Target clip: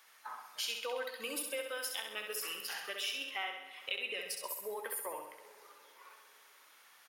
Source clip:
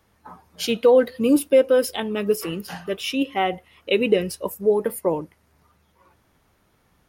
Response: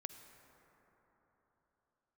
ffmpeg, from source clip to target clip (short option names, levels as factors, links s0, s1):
-filter_complex "[0:a]highpass=1400,acompressor=threshold=0.00355:ratio=3,aecho=1:1:66|132|198|264|330|396|462:0.531|0.281|0.149|0.079|0.0419|0.0222|0.0118,asplit=2[s0][s1];[1:a]atrim=start_sample=2205[s2];[s1][s2]afir=irnorm=-1:irlink=0,volume=1.26[s3];[s0][s3]amix=inputs=2:normalize=0,volume=1.19"